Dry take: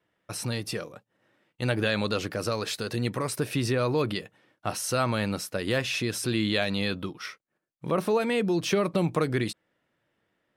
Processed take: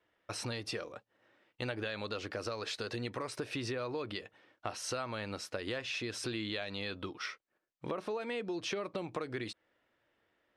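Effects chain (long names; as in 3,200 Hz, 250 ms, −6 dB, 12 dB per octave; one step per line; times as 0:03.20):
low-pass filter 5,700 Hz 12 dB per octave
parametric band 160 Hz −11.5 dB 1 octave
downward compressor, threshold −35 dBFS, peak gain reduction 13 dB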